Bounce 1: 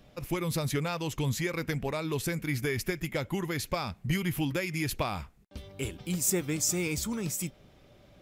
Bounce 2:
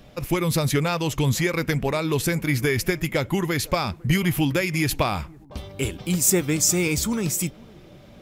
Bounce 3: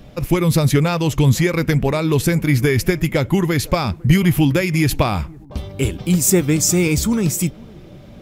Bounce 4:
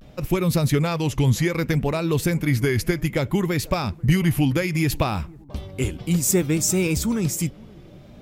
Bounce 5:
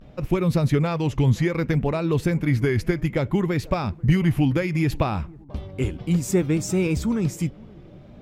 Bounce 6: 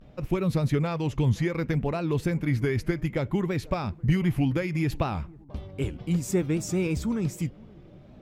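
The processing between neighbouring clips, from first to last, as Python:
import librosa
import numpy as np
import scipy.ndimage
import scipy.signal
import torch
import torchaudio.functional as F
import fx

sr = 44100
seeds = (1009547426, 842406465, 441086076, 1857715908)

y1 = fx.echo_bbd(x, sr, ms=504, stages=4096, feedback_pct=50, wet_db=-24)
y1 = y1 * librosa.db_to_amplitude(8.5)
y2 = fx.low_shelf(y1, sr, hz=400.0, db=6.5)
y2 = y2 * librosa.db_to_amplitude(2.5)
y3 = fx.vibrato(y2, sr, rate_hz=0.63, depth_cents=75.0)
y3 = y3 * librosa.db_to_amplitude(-5.0)
y4 = fx.lowpass(y3, sr, hz=2100.0, slope=6)
y5 = fx.record_warp(y4, sr, rpm=78.0, depth_cents=100.0)
y5 = y5 * librosa.db_to_amplitude(-4.5)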